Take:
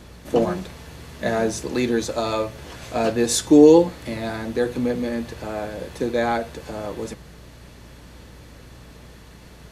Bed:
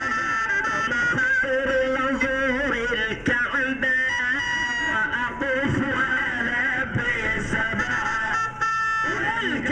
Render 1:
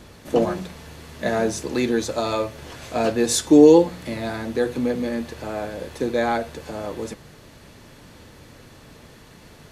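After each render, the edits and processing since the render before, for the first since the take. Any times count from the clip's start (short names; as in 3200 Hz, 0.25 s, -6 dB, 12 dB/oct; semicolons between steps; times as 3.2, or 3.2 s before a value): de-hum 60 Hz, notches 3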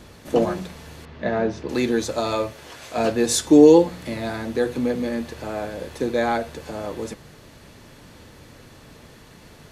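1.05–1.69 air absorption 250 m; 2.53–2.98 low shelf 280 Hz -11 dB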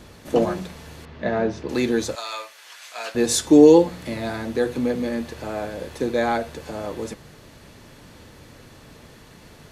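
2.15–3.15 HPF 1300 Hz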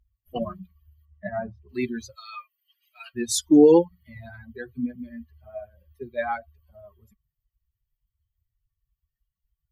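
per-bin expansion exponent 3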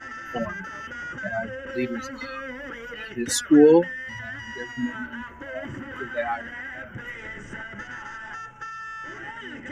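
add bed -13 dB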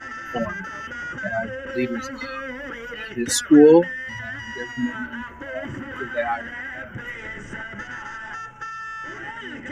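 gain +3 dB; limiter -3 dBFS, peak gain reduction 1 dB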